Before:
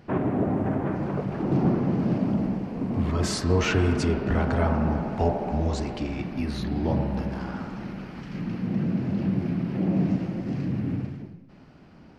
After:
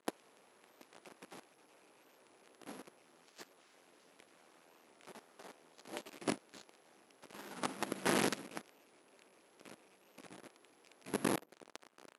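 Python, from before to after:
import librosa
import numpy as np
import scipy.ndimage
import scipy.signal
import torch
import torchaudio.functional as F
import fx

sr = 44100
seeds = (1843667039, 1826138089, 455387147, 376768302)

y = fx.rattle_buzz(x, sr, strikes_db=-25.0, level_db=-18.0)
y = fx.room_early_taps(y, sr, ms=(15, 37), db=(-9.5, -11.0))
y = (np.kron(scipy.signal.resample_poly(y, 1, 4), np.eye(4)[0]) * 4)[:len(y)]
y = fx.fuzz(y, sr, gain_db=31.0, gate_db=-37.0)
y = fx.over_compress(y, sr, threshold_db=-22.0, ratio=-0.5)
y = fx.quant_companded(y, sr, bits=4)
y = fx.cheby_harmonics(y, sr, harmonics=(3, 8), levels_db=(-9, -42), full_scale_db=-6.0)
y = scipy.signal.sosfilt(scipy.signal.cheby1(2, 1.0, [320.0, 6600.0], 'bandpass', fs=sr, output='sos'), y)
y = fx.high_shelf(y, sr, hz=4200.0, db=-10.0)
y = fx.record_warp(y, sr, rpm=45.0, depth_cents=160.0)
y = y * librosa.db_to_amplitude(-2.5)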